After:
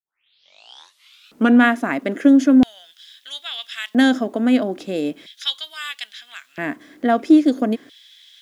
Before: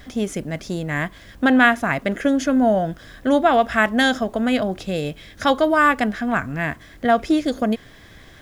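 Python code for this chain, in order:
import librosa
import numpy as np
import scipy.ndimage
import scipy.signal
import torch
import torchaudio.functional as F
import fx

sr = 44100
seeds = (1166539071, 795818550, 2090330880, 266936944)

y = fx.tape_start_head(x, sr, length_s=1.65)
y = fx.filter_lfo_highpass(y, sr, shape='square', hz=0.38, low_hz=280.0, high_hz=3400.0, q=3.6)
y = F.gain(torch.from_numpy(y), -3.0).numpy()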